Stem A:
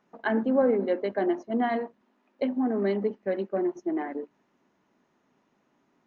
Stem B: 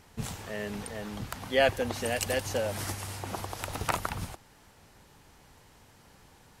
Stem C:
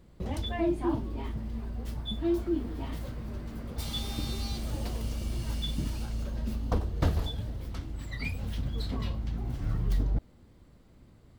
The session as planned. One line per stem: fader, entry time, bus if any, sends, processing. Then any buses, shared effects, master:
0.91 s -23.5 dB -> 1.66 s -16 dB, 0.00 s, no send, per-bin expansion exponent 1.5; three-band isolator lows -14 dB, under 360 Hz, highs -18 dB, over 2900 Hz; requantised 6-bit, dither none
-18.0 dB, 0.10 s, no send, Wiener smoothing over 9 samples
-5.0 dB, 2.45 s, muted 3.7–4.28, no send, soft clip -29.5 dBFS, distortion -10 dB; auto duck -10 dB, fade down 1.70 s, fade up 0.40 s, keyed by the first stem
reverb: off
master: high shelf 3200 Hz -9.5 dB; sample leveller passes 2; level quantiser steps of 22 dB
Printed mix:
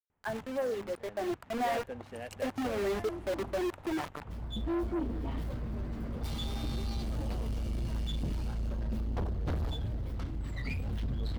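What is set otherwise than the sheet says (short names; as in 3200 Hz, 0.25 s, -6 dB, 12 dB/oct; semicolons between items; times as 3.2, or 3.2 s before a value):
stem A -23.5 dB -> -12.0 dB; master: missing level quantiser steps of 22 dB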